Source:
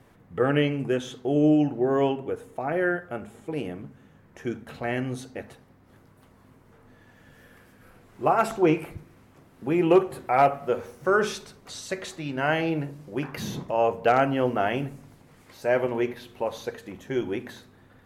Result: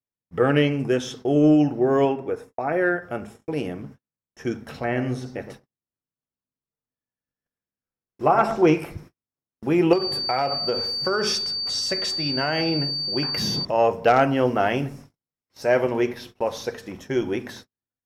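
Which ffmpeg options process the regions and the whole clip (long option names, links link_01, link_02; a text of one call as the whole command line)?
ffmpeg -i in.wav -filter_complex "[0:a]asettb=1/sr,asplit=3[link_01][link_02][link_03];[link_01]atrim=end=2.054[link_04];[link_02]atrim=start=2.05:end=3.03,asetpts=PTS-STARTPTS,afade=type=in:duration=0.004:curve=qsin,afade=type=out:start_time=0.976:duration=0.004:curve=qsin,agate=range=-33dB:threshold=-43dB:ratio=3:release=100:detection=peak,bass=frequency=250:gain=-4,treble=frequency=4000:gain=-5,bandreject=frequency=3000:width=7[link_05];[link_03]atrim=start=3.026[link_06];[link_04][link_05]acrossfade=duration=0.004:curve1=hsin:curve2=qsin[link_07];[link_07][link_06]acrossfade=duration=0.004:curve1=qsin:curve2=hsin,asettb=1/sr,asplit=3[link_08][link_09][link_10];[link_08]atrim=end=4.794[link_11];[link_09]atrim=start=4.79:end=8.62,asetpts=PTS-STARTPTS,afade=type=in:duration=0.004:curve=qsin,afade=type=out:start_time=3.826:duration=0.004:curve=qsin,acrossover=split=2600[link_12][link_13];[link_13]acompressor=threshold=-52dB:ratio=4:attack=1:release=60[link_14];[link_12][link_14]amix=inputs=2:normalize=0,asplit=2[link_15][link_16];[link_16]adelay=114,lowpass=frequency=810:poles=1,volume=-8.5dB,asplit=2[link_17][link_18];[link_18]adelay=114,lowpass=frequency=810:poles=1,volume=0.33,asplit=2[link_19][link_20];[link_20]adelay=114,lowpass=frequency=810:poles=1,volume=0.33,asplit=2[link_21][link_22];[link_22]adelay=114,lowpass=frequency=810:poles=1,volume=0.33[link_23];[link_15][link_17][link_19][link_21][link_23]amix=inputs=5:normalize=0,atrim=end_sample=168903[link_24];[link_10]atrim=start=8.616[link_25];[link_11][link_24]acrossfade=duration=0.004:curve1=hsin:curve2=qsin[link_26];[link_26][link_25]acrossfade=duration=0.004:curve1=qsin:curve2=hsin,asettb=1/sr,asplit=3[link_27][link_28][link_29];[link_27]atrim=end=9.934[link_30];[link_28]atrim=start=9.93:end=13.65,asetpts=PTS-STARTPTS,afade=type=in:duration=0.004:curve=qsin,afade=type=out:start_time=3.716:duration=0.004:curve=qsin,aeval=exprs='val(0)+0.0282*sin(2*PI*4600*n/s)':channel_layout=same,acompressor=threshold=-22dB:ratio=12:attack=3.2:release=140:knee=1:detection=peak[link_31];[link_29]atrim=start=13.646[link_32];[link_30][link_31]acrossfade=duration=0.004:curve1=hsin:curve2=qsin[link_33];[link_33][link_32]acrossfade=duration=0.004:curve1=qsin:curve2=hsin,acontrast=31,equalizer=frequency=5400:width=6.9:gain=14,agate=range=-47dB:threshold=-40dB:ratio=16:detection=peak,volume=-1.5dB" out.wav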